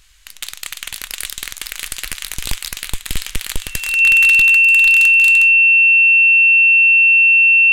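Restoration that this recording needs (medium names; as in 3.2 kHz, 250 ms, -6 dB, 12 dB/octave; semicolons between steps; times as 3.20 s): band-stop 2.7 kHz, Q 30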